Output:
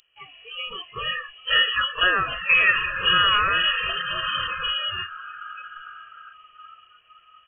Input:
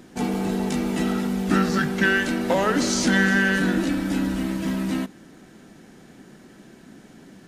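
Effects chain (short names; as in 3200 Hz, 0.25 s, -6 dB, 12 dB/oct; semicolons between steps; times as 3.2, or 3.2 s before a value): wow and flutter 89 cents; in parallel at -1 dB: compressor, threshold -34 dBFS, peak gain reduction 17.5 dB; on the sum: comb 1.6 ms, depth 70%; reverb RT60 0.60 s, pre-delay 45 ms, DRR 17.5 dB; reverse; upward compressor, threshold -31 dBFS; reverse; diffused feedback echo 1.012 s, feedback 52%, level -8 dB; inverted band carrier 3100 Hz; spectral noise reduction 25 dB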